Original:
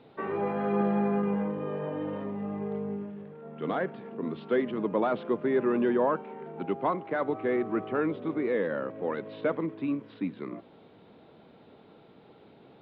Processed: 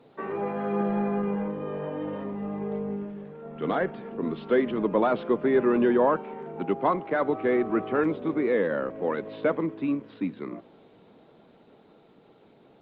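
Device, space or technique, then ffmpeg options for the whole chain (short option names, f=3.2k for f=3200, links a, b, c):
video call: -af "highpass=110,dynaudnorm=f=250:g=21:m=4dB" -ar 48000 -c:a libopus -b:a 24k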